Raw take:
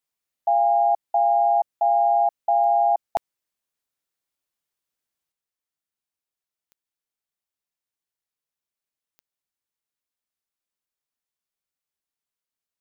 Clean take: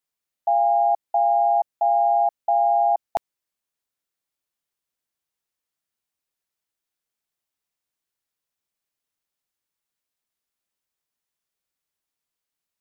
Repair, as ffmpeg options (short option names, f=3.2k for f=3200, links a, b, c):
-af "adeclick=t=4,asetnsamples=n=441:p=0,asendcmd='5.32 volume volume 5.5dB',volume=0dB"